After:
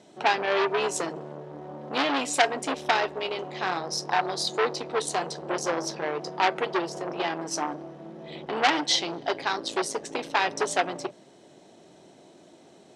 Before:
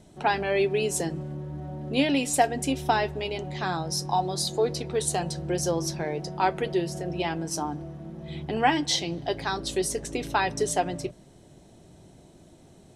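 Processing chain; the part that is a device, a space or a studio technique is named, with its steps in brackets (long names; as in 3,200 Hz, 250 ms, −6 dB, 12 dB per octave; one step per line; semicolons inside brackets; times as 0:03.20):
public-address speaker with an overloaded transformer (saturating transformer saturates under 3,000 Hz; band-pass filter 310–6,400 Hz)
level +4.5 dB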